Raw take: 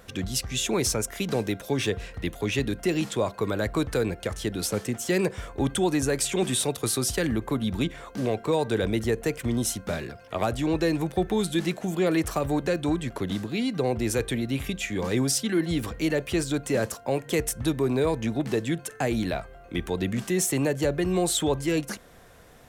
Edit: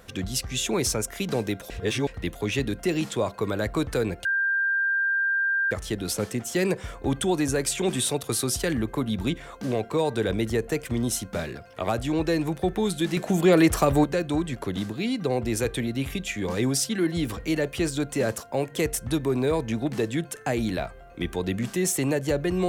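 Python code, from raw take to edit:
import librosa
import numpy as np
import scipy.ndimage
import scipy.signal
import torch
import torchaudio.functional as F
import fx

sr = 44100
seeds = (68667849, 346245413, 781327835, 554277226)

y = fx.edit(x, sr, fx.reverse_span(start_s=1.7, length_s=0.37),
    fx.insert_tone(at_s=4.25, length_s=1.46, hz=1590.0, db=-21.0),
    fx.clip_gain(start_s=11.71, length_s=0.87, db=6.0), tone=tone)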